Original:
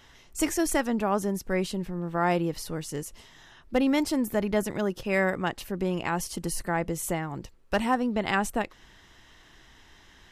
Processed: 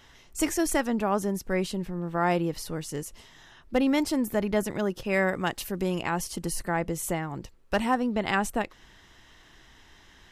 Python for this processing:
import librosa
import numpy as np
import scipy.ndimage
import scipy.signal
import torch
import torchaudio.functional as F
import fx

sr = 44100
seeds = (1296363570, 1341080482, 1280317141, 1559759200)

y = fx.high_shelf(x, sr, hz=4300.0, db=8.5, at=(5.35, 6.02))